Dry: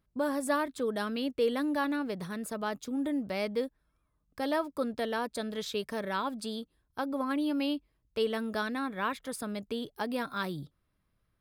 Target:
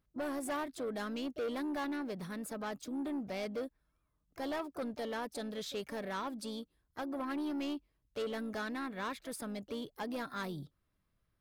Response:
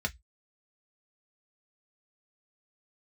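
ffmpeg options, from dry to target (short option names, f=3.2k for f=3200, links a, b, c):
-filter_complex "[0:a]asplit=2[a][b];[b]asetrate=55563,aresample=44100,atempo=0.793701,volume=-14dB[c];[a][c]amix=inputs=2:normalize=0,asoftclip=type=tanh:threshold=-29dB,volume=-3.5dB"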